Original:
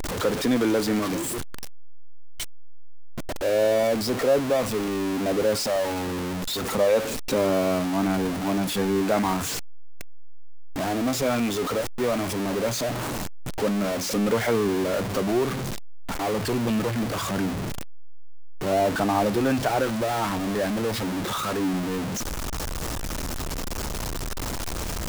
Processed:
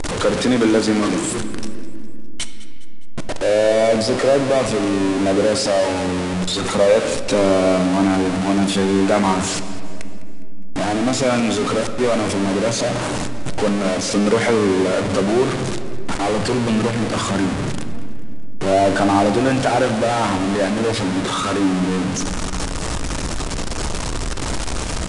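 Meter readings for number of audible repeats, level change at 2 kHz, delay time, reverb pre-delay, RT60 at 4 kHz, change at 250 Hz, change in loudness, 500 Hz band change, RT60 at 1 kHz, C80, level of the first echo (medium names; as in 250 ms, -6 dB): 3, +7.0 dB, 205 ms, 4 ms, 1.6 s, +7.0 dB, +6.5 dB, +6.5 dB, 1.9 s, 10.5 dB, -18.0 dB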